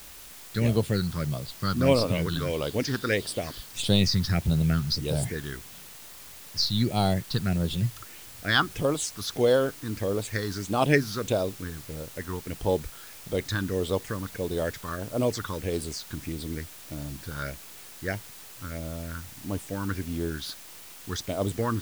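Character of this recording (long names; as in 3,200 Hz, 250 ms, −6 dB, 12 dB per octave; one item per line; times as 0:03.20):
phaser sweep stages 6, 1.6 Hz, lowest notch 590–1,900 Hz
a quantiser's noise floor 8 bits, dither triangular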